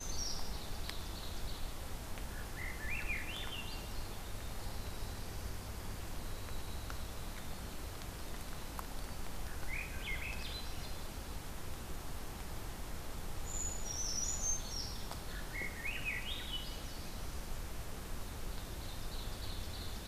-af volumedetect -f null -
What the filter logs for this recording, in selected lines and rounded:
mean_volume: -40.4 dB
max_volume: -21.2 dB